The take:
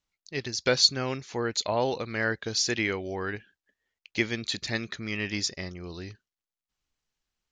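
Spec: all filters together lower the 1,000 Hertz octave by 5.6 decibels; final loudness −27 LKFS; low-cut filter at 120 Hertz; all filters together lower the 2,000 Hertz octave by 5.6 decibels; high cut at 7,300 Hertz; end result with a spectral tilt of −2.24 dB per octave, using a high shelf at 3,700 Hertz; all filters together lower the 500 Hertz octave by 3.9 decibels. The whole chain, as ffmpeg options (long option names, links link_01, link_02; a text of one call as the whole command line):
ffmpeg -i in.wav -af "highpass=120,lowpass=7300,equalizer=frequency=500:width_type=o:gain=-3.5,equalizer=frequency=1000:width_type=o:gain=-5,equalizer=frequency=2000:width_type=o:gain=-6.5,highshelf=frequency=3700:gain=5,volume=1.5dB" out.wav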